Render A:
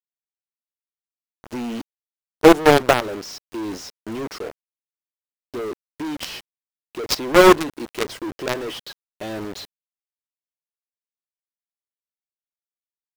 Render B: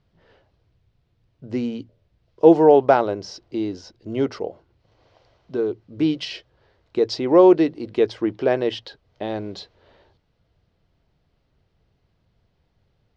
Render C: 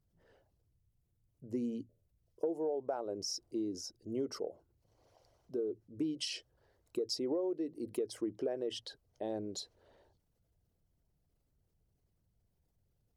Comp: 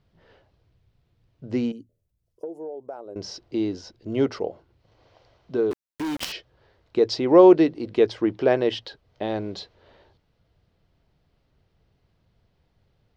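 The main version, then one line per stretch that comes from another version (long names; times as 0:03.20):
B
0:01.72–0:03.16: punch in from C
0:05.71–0:06.32: punch in from A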